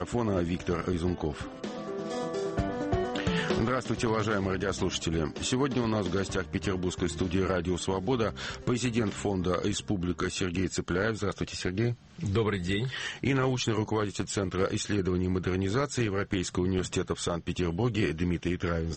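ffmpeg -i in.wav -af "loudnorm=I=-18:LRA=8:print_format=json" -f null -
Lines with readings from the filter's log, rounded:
"input_i" : "-30.2",
"input_tp" : "-15.0",
"input_lra" : "1.4",
"input_thresh" : "-40.2",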